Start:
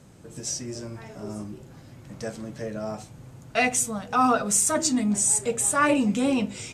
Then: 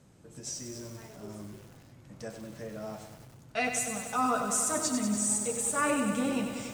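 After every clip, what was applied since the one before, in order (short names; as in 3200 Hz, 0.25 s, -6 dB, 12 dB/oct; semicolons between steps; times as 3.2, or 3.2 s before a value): lo-fi delay 96 ms, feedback 80%, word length 7-bit, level -7 dB; gain -8 dB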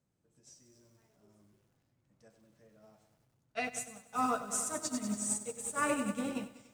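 upward expander 2.5:1, over -39 dBFS; gain -2 dB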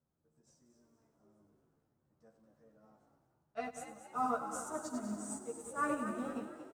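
resonant high shelf 1700 Hz -8.5 dB, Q 1.5; doubler 13 ms -2 dB; frequency-shifting echo 0.232 s, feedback 40%, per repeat +62 Hz, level -10.5 dB; gain -5.5 dB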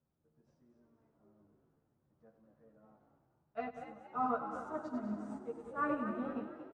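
air absorption 340 m; gain +1.5 dB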